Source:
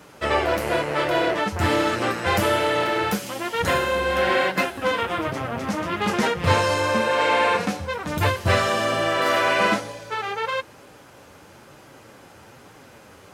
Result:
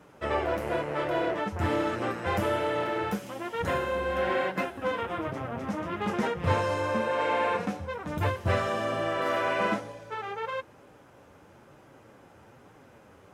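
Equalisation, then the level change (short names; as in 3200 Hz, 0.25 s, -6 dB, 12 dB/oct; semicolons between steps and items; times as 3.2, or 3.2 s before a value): high shelf 2100 Hz -9.5 dB; bell 4400 Hz -4.5 dB 0.25 oct; -5.5 dB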